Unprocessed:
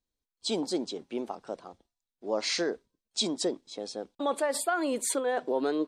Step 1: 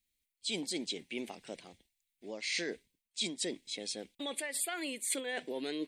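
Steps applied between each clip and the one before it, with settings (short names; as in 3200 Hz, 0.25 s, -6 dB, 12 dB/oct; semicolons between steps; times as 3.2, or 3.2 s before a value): EQ curve 180 Hz 0 dB, 1300 Hz -12 dB, 2100 Hz +14 dB, 5500 Hz +4 dB, 9300 Hz +12 dB; reverse; compressor 6:1, threshold -32 dBFS, peak gain reduction 14.5 dB; reverse; gain -1.5 dB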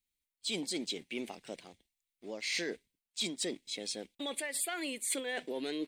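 sample leveller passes 1; gain -3 dB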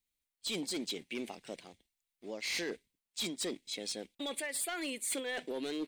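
hard clip -31.5 dBFS, distortion -16 dB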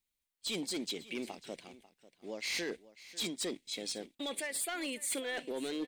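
echo 0.544 s -18 dB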